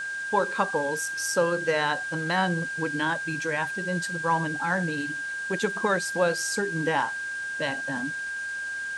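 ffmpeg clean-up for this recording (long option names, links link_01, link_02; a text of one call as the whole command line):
ffmpeg -i in.wav -af "adeclick=threshold=4,bandreject=frequency=1600:width=30,afwtdn=0.0056" out.wav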